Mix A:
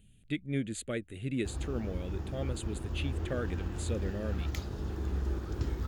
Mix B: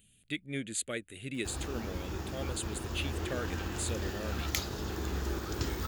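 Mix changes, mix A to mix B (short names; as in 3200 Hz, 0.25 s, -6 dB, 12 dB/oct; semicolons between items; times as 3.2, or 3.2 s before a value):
background +6.5 dB; master: add tilt +2.5 dB/oct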